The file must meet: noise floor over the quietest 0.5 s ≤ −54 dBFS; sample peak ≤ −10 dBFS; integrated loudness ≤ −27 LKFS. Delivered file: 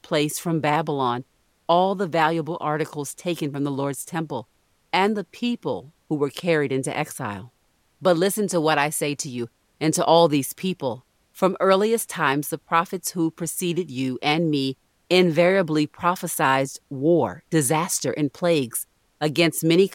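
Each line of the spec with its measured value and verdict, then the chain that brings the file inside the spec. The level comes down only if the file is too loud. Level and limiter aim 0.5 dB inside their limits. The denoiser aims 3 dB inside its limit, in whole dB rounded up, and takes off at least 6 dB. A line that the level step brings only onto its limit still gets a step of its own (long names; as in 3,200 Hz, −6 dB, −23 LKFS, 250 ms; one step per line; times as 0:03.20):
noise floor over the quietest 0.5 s −65 dBFS: in spec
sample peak −5.5 dBFS: out of spec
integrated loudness −23.0 LKFS: out of spec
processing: level −4.5 dB
brickwall limiter −10.5 dBFS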